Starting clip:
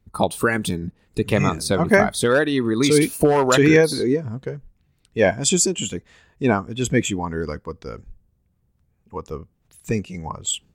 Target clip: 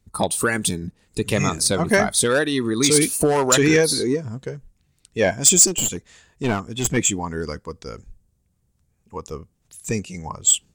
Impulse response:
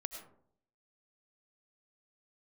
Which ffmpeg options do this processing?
-filter_complex "[0:a]equalizer=f=7.7k:w=0.65:g=12.5,acontrast=26,asettb=1/sr,asplit=3[a][b][c];[a]atrim=end=5.674[d];[b]atrim=start=5.67:end=6.97,asetpts=PTS-STARTPTS,afade=t=in:d=0.004:c=qsin,afade=t=out:st=1.296:d=0.004:c=qsin,aeval=exprs='clip(val(0),-1,0.141)':c=same[e];[c]atrim=start=6.966[f];[d][e]acrossfade=d=0.004:c1=hsin:c2=qsin[g];[g][f]acrossfade=d=0.004:c1=qsin:c2=hsin,volume=-6.5dB"

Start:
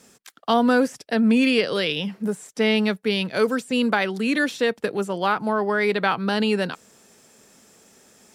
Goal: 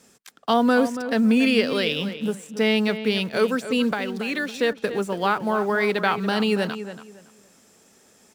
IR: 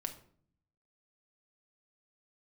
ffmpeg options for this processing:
-filter_complex "[0:a]asettb=1/sr,asplit=3[a][b][c];[a]atrim=end=3.914[d];[b]atrim=start=3.91:end=4.54,asetpts=PTS-STARTPTS,afade=t=in:d=0.004:c=qsin,afade=t=out:st=0.626:d=0.004:c=qsin,acrossover=split=400|6300[e][f][g];[e]acompressor=threshold=-33dB:ratio=4[h];[f]acompressor=threshold=-25dB:ratio=4[i];[g]acompressor=threshold=-55dB:ratio=4[j];[h][i][j]amix=inputs=3:normalize=0[k];[c]atrim=start=4.536[l];[d][k]acrossfade=d=0.004:c1=hsin:c2=qsin[m];[m][l]acrossfade=d=0.004:c1=qsin:c2=hsin,asplit=2[n][o];[o]acrusher=bits=5:mix=0:aa=0.000001,volume=-11.5dB[p];[n][p]amix=inputs=2:normalize=0,asplit=2[q][r];[r]adelay=281,lowpass=f=2.8k:p=1,volume=-11dB,asplit=2[s][t];[t]adelay=281,lowpass=f=2.8k:p=1,volume=0.24,asplit=2[u][v];[v]adelay=281,lowpass=f=2.8k:p=1,volume=0.24[w];[q][s][u][w]amix=inputs=4:normalize=0,volume=-2.5dB"

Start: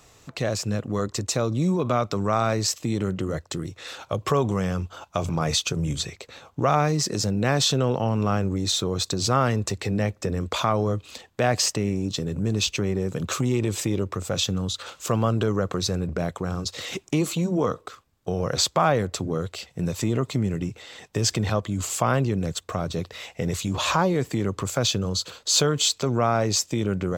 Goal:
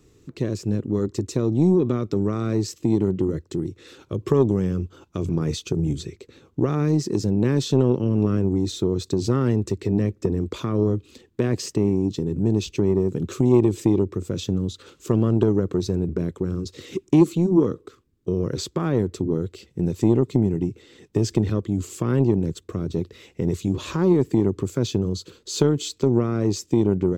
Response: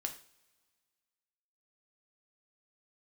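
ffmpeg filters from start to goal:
-af "lowshelf=f=500:t=q:w=3:g=10.5,aeval=exprs='1.26*(cos(1*acos(clip(val(0)/1.26,-1,1)))-cos(1*PI/2))+0.178*(cos(3*acos(clip(val(0)/1.26,-1,1)))-cos(3*PI/2))':c=same,volume=-5dB"

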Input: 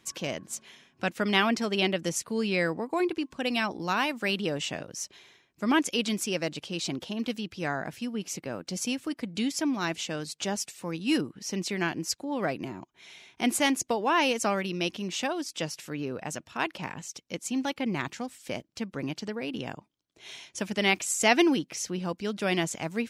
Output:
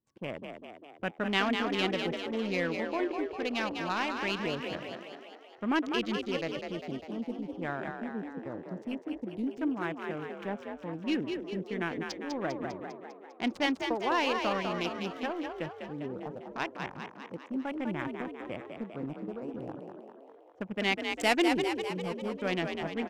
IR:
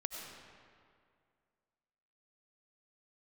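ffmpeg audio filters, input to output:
-filter_complex "[0:a]adynamicsmooth=sensitivity=5:basefreq=640,afwtdn=0.01,asplit=9[a][b][c][d][e][f][g][h][i];[b]adelay=200,afreqshift=47,volume=-5.5dB[j];[c]adelay=400,afreqshift=94,volume=-9.9dB[k];[d]adelay=600,afreqshift=141,volume=-14.4dB[l];[e]adelay=800,afreqshift=188,volume=-18.8dB[m];[f]adelay=1000,afreqshift=235,volume=-23.2dB[n];[g]adelay=1200,afreqshift=282,volume=-27.7dB[o];[h]adelay=1400,afreqshift=329,volume=-32.1dB[p];[i]adelay=1600,afreqshift=376,volume=-36.6dB[q];[a][j][k][l][m][n][o][p][q]amix=inputs=9:normalize=0,volume=-4.5dB"

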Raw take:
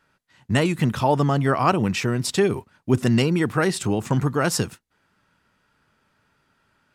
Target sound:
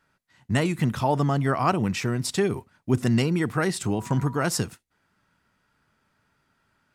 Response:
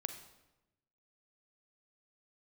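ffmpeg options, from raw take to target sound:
-filter_complex "[0:a]asettb=1/sr,asplit=3[a][b][c];[a]atrim=end=3.954[d];[b]atrim=start=3.95:end=4.45,asetpts=PTS-STARTPTS,afade=t=in:d=0.004:c=qsin,afade=t=out:st=0.496:d=0.004:c=qsin,aeval=exprs='val(0)+0.0126*sin(2*PI*970*n/s)':c=same[e];[c]atrim=start=4.446[f];[d][e]acrossfade=d=0.004:c1=hsin:c2=qsin[g];[g][f]acrossfade=d=0.004:c1=qsin:c2=hsin,asplit=2[h][i];[i]asuperstop=centerf=1200:order=20:qfactor=1.1[j];[1:a]atrim=start_sample=2205,atrim=end_sample=3528[k];[j][k]afir=irnorm=-1:irlink=0,volume=-13.5dB[l];[h][l]amix=inputs=2:normalize=0,volume=-3.5dB"

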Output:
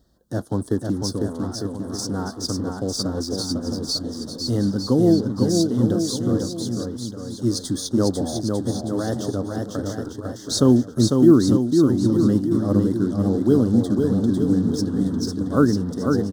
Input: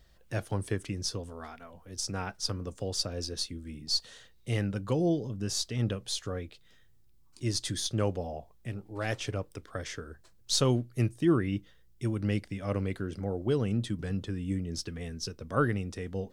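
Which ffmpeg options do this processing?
-filter_complex "[0:a]highpass=f=48:p=1,equalizer=f=260:t=o:w=0.99:g=12.5,asplit=2[a][b];[b]acrusher=bits=5:mix=0:aa=0.5,volume=-4dB[c];[a][c]amix=inputs=2:normalize=0,asuperstop=centerf=2400:order=4:qfactor=1,aecho=1:1:500|900|1220|1476|1681:0.631|0.398|0.251|0.158|0.1"

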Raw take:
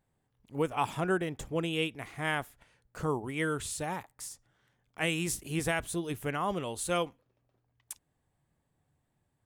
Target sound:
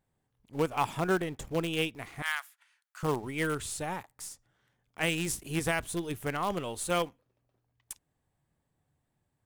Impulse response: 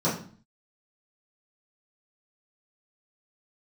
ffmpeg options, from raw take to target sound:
-filter_complex "[0:a]asplit=2[a][b];[b]acrusher=bits=5:dc=4:mix=0:aa=0.000001,volume=-9dB[c];[a][c]amix=inputs=2:normalize=0,asettb=1/sr,asplit=3[d][e][f];[d]atrim=end=2.224[g];[e]atrim=start=2.22:end=3.03,asetpts=PTS-STARTPTS,afade=t=in:d=0.004:c=qsin,afade=t=out:st=0.806:d=0.004:c=qsin,highpass=f=1.1k:w=0.5412,highpass=f=1.1k:w=1.3066[h];[f]atrim=start=3.026[i];[g][h]acrossfade=d=0.004:c1=hsin:c2=qsin[j];[j][i]acrossfade=d=0.004:c1=qsin:c2=hsin,volume=-1.5dB"

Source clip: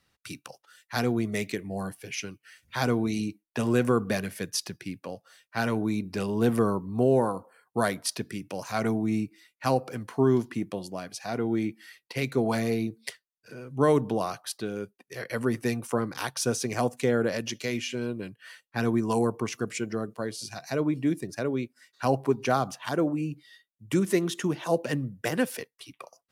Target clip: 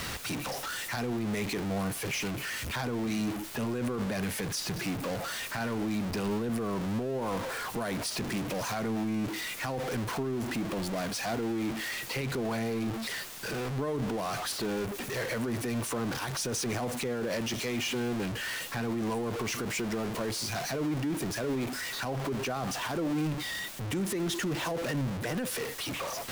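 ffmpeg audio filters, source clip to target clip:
-af "aeval=exprs='val(0)+0.5*0.0501*sgn(val(0))':c=same,highshelf=f=6.7k:g=-4,alimiter=limit=-21.5dB:level=0:latency=1:release=30,volume=-3.5dB"

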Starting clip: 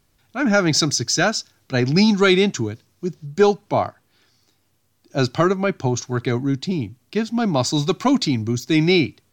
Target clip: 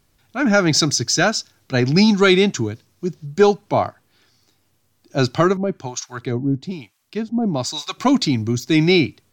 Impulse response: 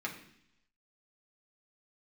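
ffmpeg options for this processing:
-filter_complex "[0:a]asettb=1/sr,asplit=3[a][b][c];[a]atrim=end=5.574[d];[b]atrim=start=5.57:end=7.98,asetpts=PTS-STARTPTS,afade=t=in:d=0.004:c=qsin,afade=t=out:st=2.406:d=0.004:c=qsin,acrossover=split=760[e][f];[e]aeval=exprs='val(0)*(1-1/2+1/2*cos(2*PI*1.1*n/s))':c=same[g];[f]aeval=exprs='val(0)*(1-1/2-1/2*cos(2*PI*1.1*n/s))':c=same[h];[g][h]amix=inputs=2:normalize=0[i];[c]atrim=start=7.976[j];[d][i]acrossfade=d=0.004:c1=hsin:c2=qsin[k];[k][j]acrossfade=d=0.004:c1=qsin:c2=hsin,volume=1.5dB"

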